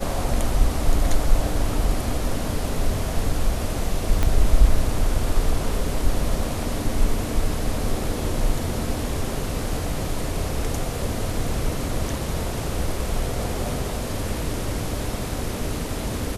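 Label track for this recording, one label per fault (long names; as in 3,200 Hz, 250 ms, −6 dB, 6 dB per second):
4.230000	4.230000	click −8 dBFS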